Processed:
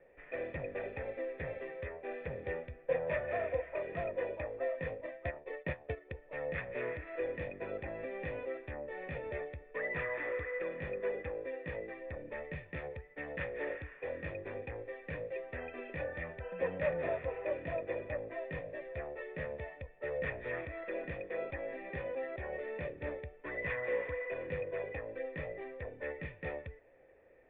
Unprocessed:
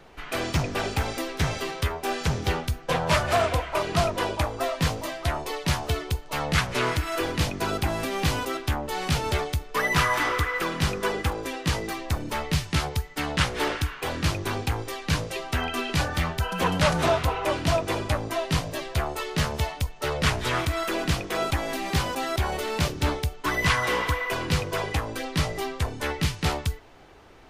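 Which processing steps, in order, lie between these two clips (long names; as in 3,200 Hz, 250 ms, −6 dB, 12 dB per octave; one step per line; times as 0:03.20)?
0:04.91–0:06.12: transient designer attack +6 dB, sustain −12 dB
formant resonators in series e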